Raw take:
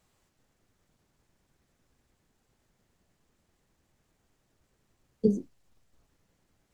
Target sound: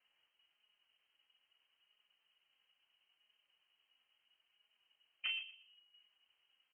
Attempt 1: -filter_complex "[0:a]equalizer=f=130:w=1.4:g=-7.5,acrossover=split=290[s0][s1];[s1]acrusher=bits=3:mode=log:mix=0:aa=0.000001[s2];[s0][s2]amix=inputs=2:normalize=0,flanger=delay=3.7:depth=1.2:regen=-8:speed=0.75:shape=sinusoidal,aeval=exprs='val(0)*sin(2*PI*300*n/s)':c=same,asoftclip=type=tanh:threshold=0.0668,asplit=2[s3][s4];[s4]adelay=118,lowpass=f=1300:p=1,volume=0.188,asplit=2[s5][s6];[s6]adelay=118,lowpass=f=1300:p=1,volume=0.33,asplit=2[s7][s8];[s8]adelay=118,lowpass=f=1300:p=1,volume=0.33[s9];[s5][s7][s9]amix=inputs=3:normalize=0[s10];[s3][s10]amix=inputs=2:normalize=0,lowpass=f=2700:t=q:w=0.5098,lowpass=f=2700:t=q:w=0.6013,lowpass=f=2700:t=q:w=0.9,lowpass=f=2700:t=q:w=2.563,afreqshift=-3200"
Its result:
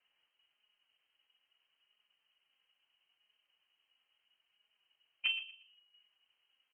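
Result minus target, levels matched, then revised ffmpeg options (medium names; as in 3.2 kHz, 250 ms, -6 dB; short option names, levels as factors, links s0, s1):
saturation: distortion -9 dB
-filter_complex "[0:a]equalizer=f=130:w=1.4:g=-7.5,acrossover=split=290[s0][s1];[s1]acrusher=bits=3:mode=log:mix=0:aa=0.000001[s2];[s0][s2]amix=inputs=2:normalize=0,flanger=delay=3.7:depth=1.2:regen=-8:speed=0.75:shape=sinusoidal,aeval=exprs='val(0)*sin(2*PI*300*n/s)':c=same,asoftclip=type=tanh:threshold=0.0188,asplit=2[s3][s4];[s4]adelay=118,lowpass=f=1300:p=1,volume=0.188,asplit=2[s5][s6];[s6]adelay=118,lowpass=f=1300:p=1,volume=0.33,asplit=2[s7][s8];[s8]adelay=118,lowpass=f=1300:p=1,volume=0.33[s9];[s5][s7][s9]amix=inputs=3:normalize=0[s10];[s3][s10]amix=inputs=2:normalize=0,lowpass=f=2700:t=q:w=0.5098,lowpass=f=2700:t=q:w=0.6013,lowpass=f=2700:t=q:w=0.9,lowpass=f=2700:t=q:w=2.563,afreqshift=-3200"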